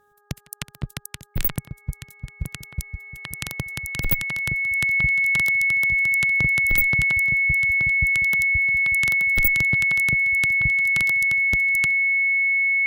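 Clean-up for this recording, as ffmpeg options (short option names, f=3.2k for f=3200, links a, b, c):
-af "bandreject=f=412.2:t=h:w=4,bandreject=f=824.4:t=h:w=4,bandreject=f=1.2366k:t=h:w=4,bandreject=f=1.6488k:t=h:w=4,bandreject=f=2.2k:w=30"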